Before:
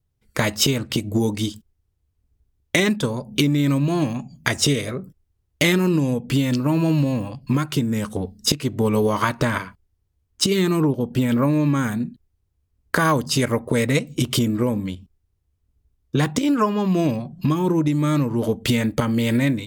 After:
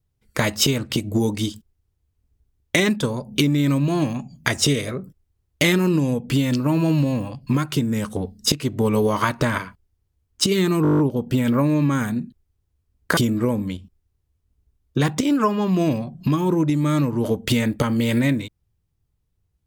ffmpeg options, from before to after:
-filter_complex "[0:a]asplit=10[s0][s1][s2][s3][s4][s5][s6][s7][s8][s9];[s0]atrim=end=10.852[s10];[s1]atrim=start=10.828:end=10.852[s11];[s2]atrim=start=10.828:end=10.852[s12];[s3]atrim=start=10.828:end=10.852[s13];[s4]atrim=start=10.828:end=10.852[s14];[s5]atrim=start=10.828:end=10.852[s15];[s6]atrim=start=10.828:end=10.852[s16];[s7]atrim=start=10.828:end=10.852[s17];[s8]atrim=start=10.828:end=13.012[s18];[s9]atrim=start=14.348[s19];[s10][s11]acrossfade=d=0.004:c1=hsin:c2=hsin[s20];[s20][s12]acrossfade=d=0.004:c1=hsin:c2=hsin[s21];[s21][s13]acrossfade=d=0.004:c1=hsin:c2=hsin[s22];[s22][s14]acrossfade=d=0.004:c1=hsin:c2=hsin[s23];[s23][s15]acrossfade=d=0.004:c1=hsin:c2=hsin[s24];[s24][s16]acrossfade=d=0.004:c1=hsin:c2=hsin[s25];[s25][s17]acrossfade=d=0.004:c1=hsin:c2=hsin[s26];[s26][s18]acrossfade=d=0.004:c1=hsin:c2=hsin[s27];[s27][s19]acrossfade=d=0.004:c1=hsin:c2=hsin"

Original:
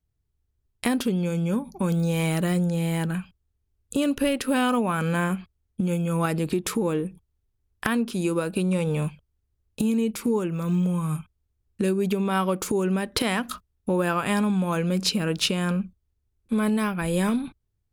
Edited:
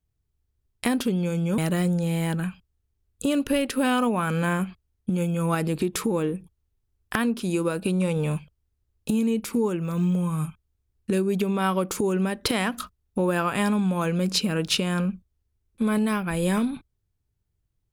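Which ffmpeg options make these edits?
-filter_complex "[0:a]asplit=2[s0][s1];[s0]atrim=end=1.582[s2];[s1]atrim=start=2.288[s3];[s2][s3]acrossfade=d=0.004:c1=hsin:c2=hsin"

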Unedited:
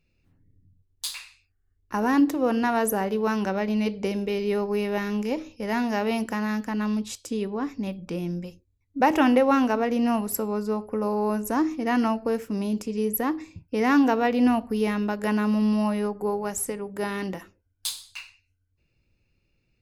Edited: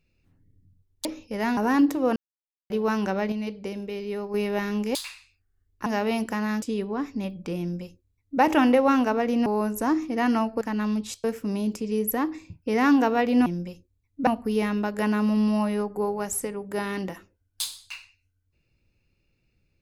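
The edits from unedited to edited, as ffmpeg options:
-filter_complex "[0:a]asplit=15[s0][s1][s2][s3][s4][s5][s6][s7][s8][s9][s10][s11][s12][s13][s14];[s0]atrim=end=1.052[s15];[s1]atrim=start=5.338:end=5.862[s16];[s2]atrim=start=1.958:end=2.55,asetpts=PTS-STARTPTS,afade=t=out:st=0.588:d=0.004:c=hsin[s17];[s3]atrim=start=2.55:end=3.09,asetpts=PTS-STARTPTS,volume=0[s18];[s4]atrim=start=3.09:end=3.712,asetpts=PTS-STARTPTS,afade=t=in:d=0.004:c=hsin[s19];[s5]atrim=start=3.708:end=4.732,asetpts=PTS-STARTPTS,volume=0.501[s20];[s6]atrim=start=4.728:end=5.342[s21];[s7]atrim=start=1.048:end=1.962[s22];[s8]atrim=start=5.858:end=6.622[s23];[s9]atrim=start=7.248:end=10.092[s24];[s10]atrim=start=11.148:end=12.302[s25];[s11]atrim=start=6.618:end=7.252[s26];[s12]atrim=start=12.298:end=14.522[s27];[s13]atrim=start=8.228:end=9.042[s28];[s14]atrim=start=14.518[s29];[s15][s16]acrossfade=d=0.004:c1=hsin:c2=hsin[s30];[s17][s18][s19]concat=n=3:v=0:a=1[s31];[s30][s31]acrossfade=d=0.004:c1=hsin:c2=hsin[s32];[s32][s20]acrossfade=d=0.004:c1=hsin:c2=hsin[s33];[s33][s21]acrossfade=d=0.004:c1=hsin:c2=hsin[s34];[s34][s22]acrossfade=d=0.004:c1=hsin:c2=hsin[s35];[s35][s23]acrossfade=d=0.004:c1=hsin:c2=hsin[s36];[s36][s24]acrossfade=d=0.004:c1=hsin:c2=hsin[s37];[s37][s25]acrossfade=d=0.004:c1=hsin:c2=hsin[s38];[s38][s26]acrossfade=d=0.004:c1=hsin:c2=hsin[s39];[s39][s27]acrossfade=d=0.004:c1=hsin:c2=hsin[s40];[s40][s28]acrossfade=d=0.004:c1=hsin:c2=hsin[s41];[s41][s29]acrossfade=d=0.004:c1=hsin:c2=hsin"

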